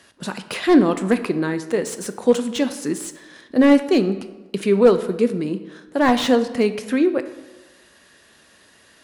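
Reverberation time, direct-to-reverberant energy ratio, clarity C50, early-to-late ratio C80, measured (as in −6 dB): 1.2 s, 10.0 dB, 12.5 dB, 14.0 dB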